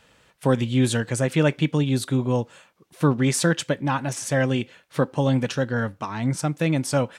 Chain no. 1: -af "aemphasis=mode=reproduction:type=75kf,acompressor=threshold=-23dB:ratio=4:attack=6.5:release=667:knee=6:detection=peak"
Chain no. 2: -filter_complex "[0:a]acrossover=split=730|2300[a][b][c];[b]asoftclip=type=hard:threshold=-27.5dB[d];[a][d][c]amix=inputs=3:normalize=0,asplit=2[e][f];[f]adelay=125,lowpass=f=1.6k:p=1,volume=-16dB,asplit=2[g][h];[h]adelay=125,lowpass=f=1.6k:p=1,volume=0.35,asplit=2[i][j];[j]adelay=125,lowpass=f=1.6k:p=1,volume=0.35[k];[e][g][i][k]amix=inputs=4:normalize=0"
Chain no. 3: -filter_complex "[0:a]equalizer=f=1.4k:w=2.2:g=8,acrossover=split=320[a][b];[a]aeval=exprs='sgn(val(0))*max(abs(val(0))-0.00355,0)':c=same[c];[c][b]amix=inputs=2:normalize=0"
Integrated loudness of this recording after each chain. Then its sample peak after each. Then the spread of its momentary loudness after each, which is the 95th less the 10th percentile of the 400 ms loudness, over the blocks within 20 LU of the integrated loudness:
-30.0, -23.5, -23.0 LUFS; -14.5, -8.0, -5.5 dBFS; 4, 6, 6 LU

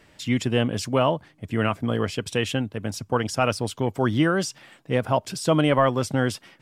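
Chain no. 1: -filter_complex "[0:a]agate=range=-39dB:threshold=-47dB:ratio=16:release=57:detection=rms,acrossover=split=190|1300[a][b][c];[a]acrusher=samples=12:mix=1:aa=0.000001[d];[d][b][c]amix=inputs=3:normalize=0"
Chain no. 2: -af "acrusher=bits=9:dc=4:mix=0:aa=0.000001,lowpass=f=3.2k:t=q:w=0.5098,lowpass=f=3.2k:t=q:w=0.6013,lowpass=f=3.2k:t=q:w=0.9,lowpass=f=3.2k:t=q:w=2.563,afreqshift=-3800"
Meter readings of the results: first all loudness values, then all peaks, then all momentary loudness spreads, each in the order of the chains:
-24.5, -21.0 LUFS; -7.0, -7.5 dBFS; 7, 7 LU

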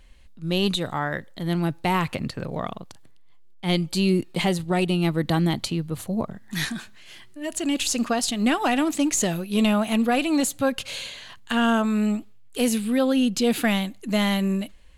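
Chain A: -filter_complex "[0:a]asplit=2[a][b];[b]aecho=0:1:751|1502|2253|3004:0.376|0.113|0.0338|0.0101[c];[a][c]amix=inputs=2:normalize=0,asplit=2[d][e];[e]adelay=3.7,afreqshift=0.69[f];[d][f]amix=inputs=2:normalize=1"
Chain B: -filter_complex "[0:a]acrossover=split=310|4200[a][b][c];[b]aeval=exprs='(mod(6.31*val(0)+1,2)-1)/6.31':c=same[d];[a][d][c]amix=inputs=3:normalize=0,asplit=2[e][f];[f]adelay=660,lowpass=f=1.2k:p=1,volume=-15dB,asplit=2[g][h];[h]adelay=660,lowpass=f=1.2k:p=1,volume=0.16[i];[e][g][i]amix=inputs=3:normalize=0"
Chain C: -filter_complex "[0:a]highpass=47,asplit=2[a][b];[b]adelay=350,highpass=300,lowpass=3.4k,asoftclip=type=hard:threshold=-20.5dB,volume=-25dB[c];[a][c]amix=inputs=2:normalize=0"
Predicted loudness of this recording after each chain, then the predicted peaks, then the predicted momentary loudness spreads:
-27.0, -24.0, -24.0 LUFS; -10.5, -10.5, -11.5 dBFS; 9, 11, 11 LU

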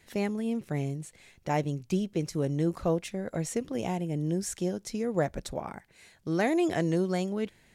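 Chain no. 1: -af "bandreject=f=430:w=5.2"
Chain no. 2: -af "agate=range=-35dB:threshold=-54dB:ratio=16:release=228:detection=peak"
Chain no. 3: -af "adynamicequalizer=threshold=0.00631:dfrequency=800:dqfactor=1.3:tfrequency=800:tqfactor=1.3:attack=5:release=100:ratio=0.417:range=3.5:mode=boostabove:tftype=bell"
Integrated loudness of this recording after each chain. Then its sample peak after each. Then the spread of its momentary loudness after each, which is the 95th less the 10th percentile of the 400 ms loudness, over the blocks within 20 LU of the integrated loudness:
-31.5, -31.0, -29.0 LUFS; -14.5, -13.5, -11.5 dBFS; 10, 10, 9 LU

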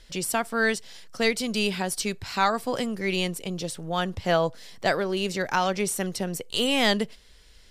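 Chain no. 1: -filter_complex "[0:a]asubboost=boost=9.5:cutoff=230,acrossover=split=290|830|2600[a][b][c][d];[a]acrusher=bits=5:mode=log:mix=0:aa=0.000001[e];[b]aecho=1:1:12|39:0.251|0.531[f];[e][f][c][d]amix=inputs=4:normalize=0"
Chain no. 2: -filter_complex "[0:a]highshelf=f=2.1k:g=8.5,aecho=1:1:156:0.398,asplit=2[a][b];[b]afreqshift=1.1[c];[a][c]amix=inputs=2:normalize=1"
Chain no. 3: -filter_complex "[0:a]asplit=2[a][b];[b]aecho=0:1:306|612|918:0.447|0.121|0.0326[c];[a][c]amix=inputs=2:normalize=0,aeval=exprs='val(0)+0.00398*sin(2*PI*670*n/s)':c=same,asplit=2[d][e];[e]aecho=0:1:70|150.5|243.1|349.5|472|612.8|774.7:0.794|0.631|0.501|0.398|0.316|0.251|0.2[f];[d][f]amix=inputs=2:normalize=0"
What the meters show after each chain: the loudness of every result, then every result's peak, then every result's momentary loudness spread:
-21.0, -25.5, -21.5 LUFS; -3.5, -6.5, -5.5 dBFS; 8, 7, 5 LU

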